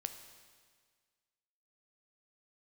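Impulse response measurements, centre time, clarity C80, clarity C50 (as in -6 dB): 21 ms, 10.5 dB, 9.0 dB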